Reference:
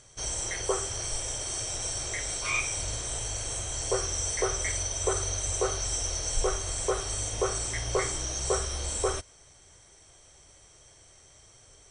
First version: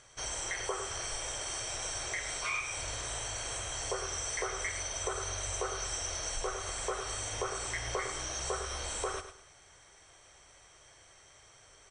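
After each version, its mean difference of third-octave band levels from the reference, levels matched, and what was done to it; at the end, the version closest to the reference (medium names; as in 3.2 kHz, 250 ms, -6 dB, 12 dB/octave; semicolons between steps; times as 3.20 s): 3.5 dB: peaking EQ 1.5 kHz +11 dB 2.9 oct; compression 3:1, threshold -26 dBFS, peak gain reduction 8 dB; feedback delay 105 ms, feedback 31%, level -10 dB; trim -7.5 dB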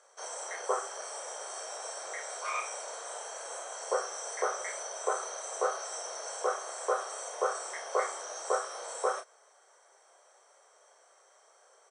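10.0 dB: steep high-pass 470 Hz 36 dB/octave; resonant high shelf 1.9 kHz -10 dB, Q 1.5; doubling 30 ms -6.5 dB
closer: first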